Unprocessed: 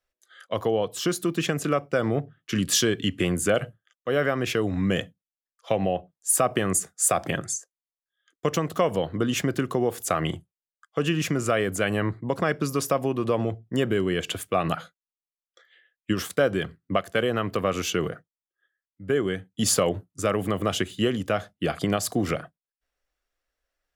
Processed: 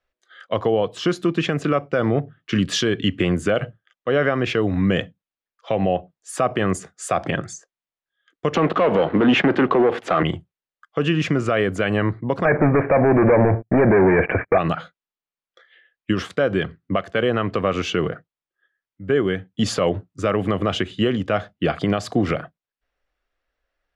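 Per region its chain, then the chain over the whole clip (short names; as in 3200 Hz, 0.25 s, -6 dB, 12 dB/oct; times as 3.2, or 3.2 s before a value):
8.55–10.23 HPF 97 Hz + sample leveller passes 3 + three-band isolator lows -14 dB, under 190 Hz, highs -20 dB, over 3400 Hz
12.45–14.58 sample leveller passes 5 + rippled Chebyshev low-pass 2400 Hz, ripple 6 dB
whole clip: LPF 3500 Hz 12 dB/oct; limiter -14 dBFS; gain +5.5 dB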